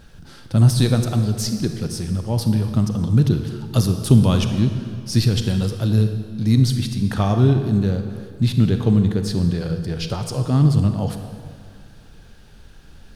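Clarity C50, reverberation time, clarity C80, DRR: 7.0 dB, 2.1 s, 8.0 dB, 6.5 dB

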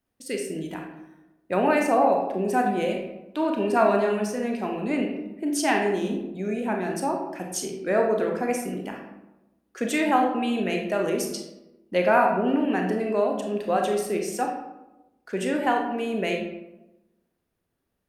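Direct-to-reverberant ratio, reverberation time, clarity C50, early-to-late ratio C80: 1.5 dB, 1.0 s, 4.0 dB, 7.0 dB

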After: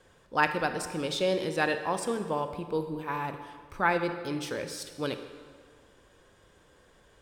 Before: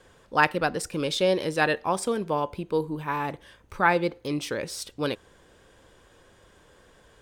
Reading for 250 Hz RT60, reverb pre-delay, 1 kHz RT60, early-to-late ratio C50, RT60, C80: 1.9 s, 27 ms, 1.8 s, 9.0 dB, 1.8 s, 10.0 dB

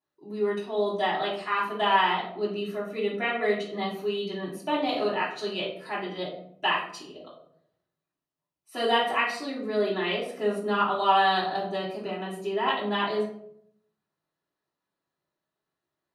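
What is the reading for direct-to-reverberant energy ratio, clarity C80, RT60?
-9.0 dB, 9.5 dB, 0.70 s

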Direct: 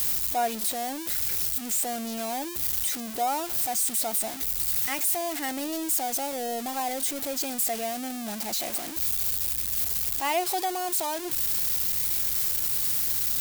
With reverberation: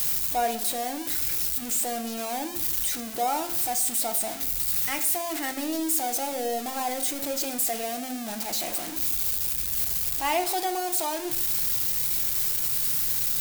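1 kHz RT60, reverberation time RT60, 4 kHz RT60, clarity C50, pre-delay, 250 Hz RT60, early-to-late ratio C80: 0.65 s, 0.65 s, 0.45 s, 12.0 dB, 6 ms, 1.1 s, 15.0 dB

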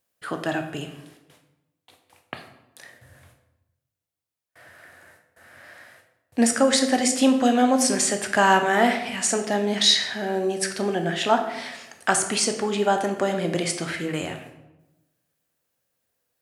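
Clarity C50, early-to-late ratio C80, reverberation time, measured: 9.0 dB, 11.0 dB, 1.0 s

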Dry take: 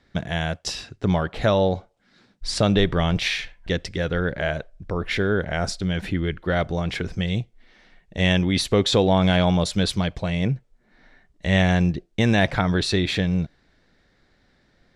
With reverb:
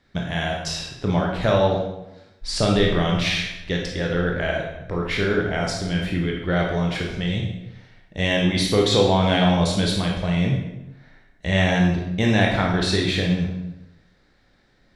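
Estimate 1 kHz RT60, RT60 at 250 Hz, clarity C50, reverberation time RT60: 0.90 s, 0.95 s, 3.5 dB, 0.90 s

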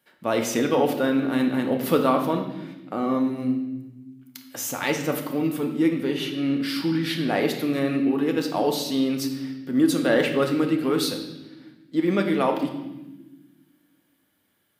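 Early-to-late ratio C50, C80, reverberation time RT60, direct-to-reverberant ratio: 7.0 dB, 9.5 dB, not exponential, 3.0 dB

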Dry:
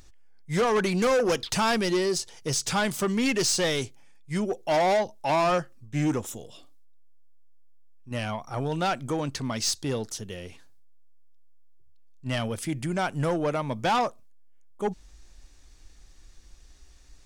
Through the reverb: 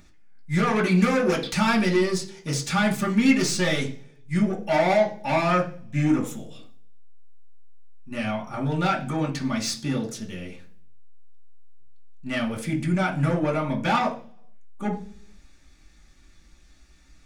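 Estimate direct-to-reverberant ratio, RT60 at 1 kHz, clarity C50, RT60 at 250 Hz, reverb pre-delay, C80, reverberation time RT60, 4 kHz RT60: -3.5 dB, 0.40 s, 11.5 dB, 0.75 s, 3 ms, 17.0 dB, 0.45 s, 0.55 s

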